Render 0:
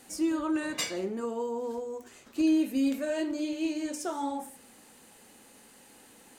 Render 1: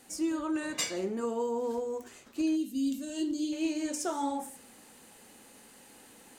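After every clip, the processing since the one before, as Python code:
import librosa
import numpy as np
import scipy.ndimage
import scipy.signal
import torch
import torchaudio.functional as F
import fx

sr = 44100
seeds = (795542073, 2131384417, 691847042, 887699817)

y = fx.spec_box(x, sr, start_s=2.56, length_s=0.96, low_hz=420.0, high_hz=2700.0, gain_db=-15)
y = fx.dynamic_eq(y, sr, hz=7000.0, q=1.6, threshold_db=-56.0, ratio=4.0, max_db=4)
y = fx.rider(y, sr, range_db=4, speed_s=0.5)
y = y * 10.0 ** (-1.5 / 20.0)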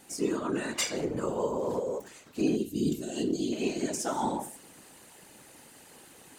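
y = fx.low_shelf(x, sr, hz=86.0, db=-8.5)
y = fx.whisperise(y, sr, seeds[0])
y = y * 10.0 ** (2.0 / 20.0)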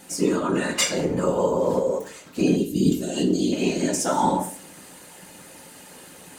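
y = fx.rev_fdn(x, sr, rt60_s=0.38, lf_ratio=0.95, hf_ratio=0.8, size_ms=33.0, drr_db=4.5)
y = y * 10.0 ** (7.0 / 20.0)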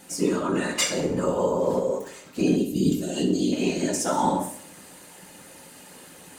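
y = fx.echo_feedback(x, sr, ms=64, feedback_pct=49, wet_db=-13.0)
y = y * 10.0 ** (-2.0 / 20.0)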